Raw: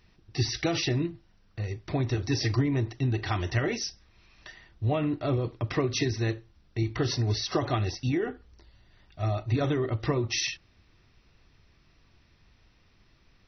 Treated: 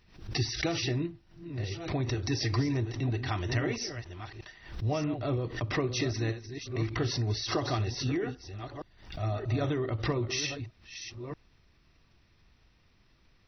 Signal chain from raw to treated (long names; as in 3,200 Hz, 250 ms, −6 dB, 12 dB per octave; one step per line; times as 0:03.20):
delay that plays each chunk backwards 630 ms, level −10 dB
background raised ahead of every attack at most 110 dB per second
level −3.5 dB